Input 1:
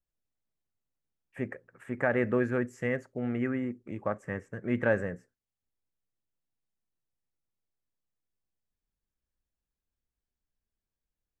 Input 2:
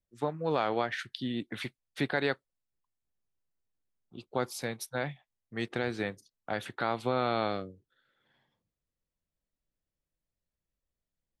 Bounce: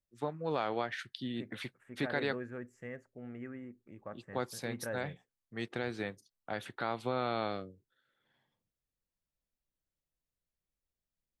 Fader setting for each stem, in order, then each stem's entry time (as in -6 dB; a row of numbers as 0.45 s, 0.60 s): -14.0 dB, -4.5 dB; 0.00 s, 0.00 s